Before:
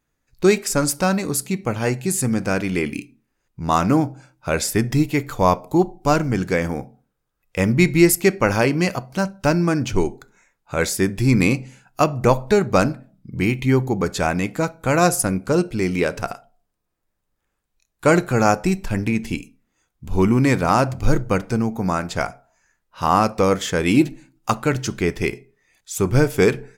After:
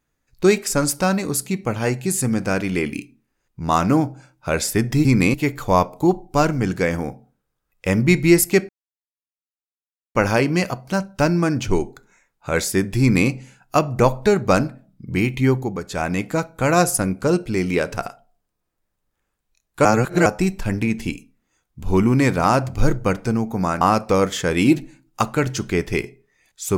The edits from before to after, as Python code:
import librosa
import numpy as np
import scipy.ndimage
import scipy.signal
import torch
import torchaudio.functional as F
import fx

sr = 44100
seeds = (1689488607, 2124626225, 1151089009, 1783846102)

y = fx.edit(x, sr, fx.insert_silence(at_s=8.4, length_s=1.46),
    fx.duplicate(start_s=11.25, length_s=0.29, to_s=5.05),
    fx.fade_down_up(start_s=13.74, length_s=0.69, db=-8.5, fade_s=0.34),
    fx.reverse_span(start_s=18.1, length_s=0.41),
    fx.cut(start_s=22.06, length_s=1.04), tone=tone)